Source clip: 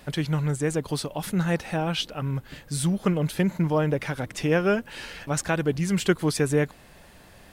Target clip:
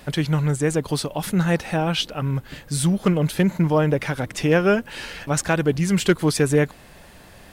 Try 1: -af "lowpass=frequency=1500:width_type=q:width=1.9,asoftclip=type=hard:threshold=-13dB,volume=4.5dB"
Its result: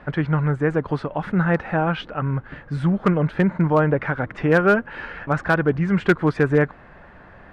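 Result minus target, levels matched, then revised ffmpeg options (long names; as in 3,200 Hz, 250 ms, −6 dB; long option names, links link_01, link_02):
2,000 Hz band +3.0 dB
-af "asoftclip=type=hard:threshold=-13dB,volume=4.5dB"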